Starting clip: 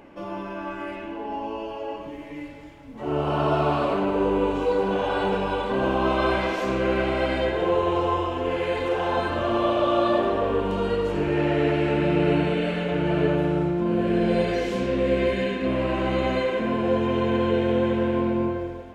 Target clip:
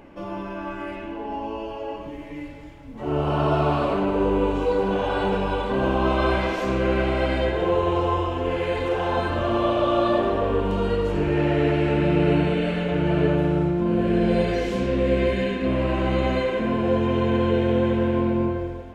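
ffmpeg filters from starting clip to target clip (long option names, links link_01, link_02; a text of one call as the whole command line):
ffmpeg -i in.wav -af "lowshelf=frequency=120:gain=8.5" out.wav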